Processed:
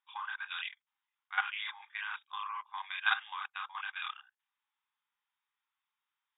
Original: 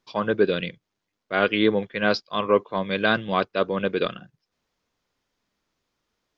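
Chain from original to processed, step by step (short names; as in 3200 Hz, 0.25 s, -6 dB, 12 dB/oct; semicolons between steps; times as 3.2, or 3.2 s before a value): chorus voices 4, 1.4 Hz, delay 30 ms, depth 3 ms; brick-wall FIR band-pass 770–3800 Hz; level quantiser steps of 13 dB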